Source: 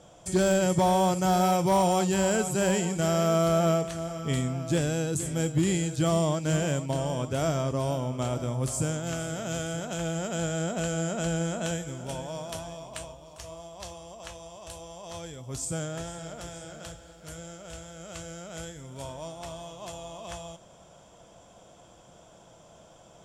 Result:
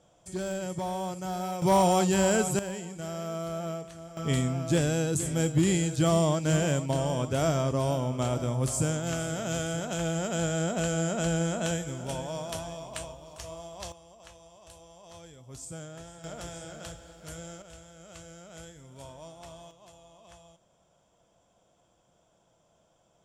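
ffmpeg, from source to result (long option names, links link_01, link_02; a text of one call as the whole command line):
ffmpeg -i in.wav -af "asetnsamples=nb_out_samples=441:pad=0,asendcmd='1.62 volume volume 1dB;2.59 volume volume -11dB;4.17 volume volume 1dB;13.92 volume volume -9dB;16.24 volume volume 0dB;17.62 volume volume -7dB;19.71 volume volume -14dB',volume=-10dB" out.wav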